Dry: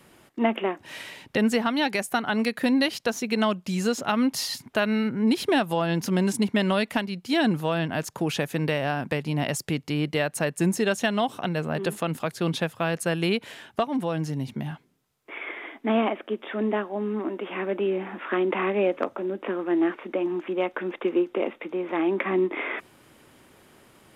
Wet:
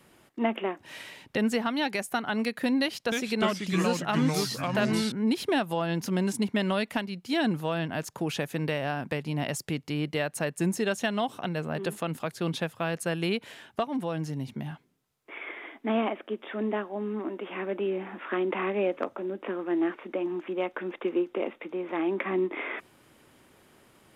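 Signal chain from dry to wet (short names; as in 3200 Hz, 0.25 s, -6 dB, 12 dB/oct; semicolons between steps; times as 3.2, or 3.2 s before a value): 2.81–5.12 echoes that change speed 0.306 s, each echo -3 st, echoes 3; gain -4 dB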